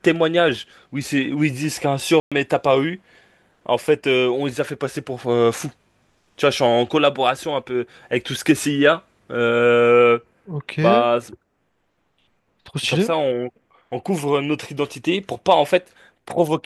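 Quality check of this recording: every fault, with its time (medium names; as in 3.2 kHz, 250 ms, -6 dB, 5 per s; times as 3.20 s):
2.20–2.32 s: dropout 116 ms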